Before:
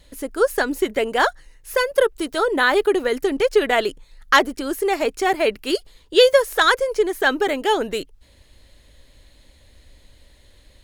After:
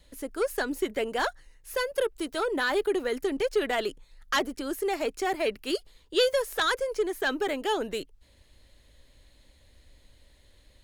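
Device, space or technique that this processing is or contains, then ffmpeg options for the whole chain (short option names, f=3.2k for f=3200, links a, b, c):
one-band saturation: -filter_complex "[0:a]acrossover=split=340|2700[a][b][c];[b]asoftclip=type=tanh:threshold=-15.5dB[d];[a][d][c]amix=inputs=3:normalize=0,volume=-7dB"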